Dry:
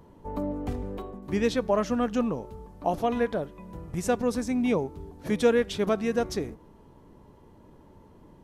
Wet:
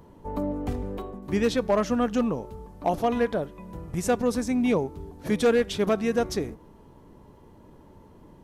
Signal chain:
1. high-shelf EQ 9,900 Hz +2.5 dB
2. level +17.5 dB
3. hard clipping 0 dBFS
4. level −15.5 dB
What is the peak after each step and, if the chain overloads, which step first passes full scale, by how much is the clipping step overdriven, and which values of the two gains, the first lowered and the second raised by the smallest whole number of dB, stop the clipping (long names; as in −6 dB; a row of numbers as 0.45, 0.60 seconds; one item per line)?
−10.5, +7.0, 0.0, −15.5 dBFS
step 2, 7.0 dB
step 2 +10.5 dB, step 4 −8.5 dB